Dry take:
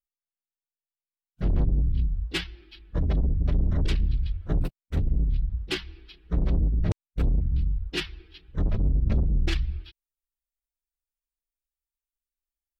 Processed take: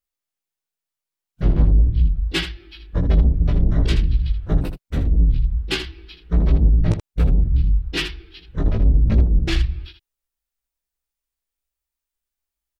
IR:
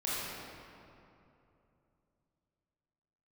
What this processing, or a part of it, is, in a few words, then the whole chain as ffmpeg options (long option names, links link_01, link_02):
slapback doubling: -filter_complex "[0:a]asplit=3[link_01][link_02][link_03];[link_02]adelay=18,volume=-3.5dB[link_04];[link_03]adelay=79,volume=-9dB[link_05];[link_01][link_04][link_05]amix=inputs=3:normalize=0,volume=5dB"